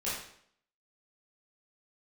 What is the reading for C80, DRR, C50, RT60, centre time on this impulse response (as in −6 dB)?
5.0 dB, −10.5 dB, 1.0 dB, 0.65 s, 55 ms